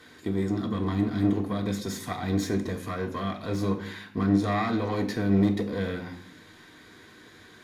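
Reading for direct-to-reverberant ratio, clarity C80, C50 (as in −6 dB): 0.0 dB, 14.5 dB, 11.0 dB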